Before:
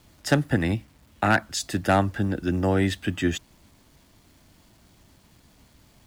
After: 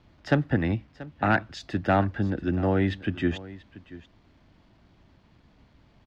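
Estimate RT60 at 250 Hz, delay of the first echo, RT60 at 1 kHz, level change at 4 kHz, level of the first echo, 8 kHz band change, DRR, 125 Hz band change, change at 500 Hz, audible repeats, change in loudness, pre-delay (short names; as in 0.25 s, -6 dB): none, 0.684 s, none, -7.5 dB, -18.0 dB, under -15 dB, none, -1.0 dB, -1.5 dB, 1, -2.0 dB, none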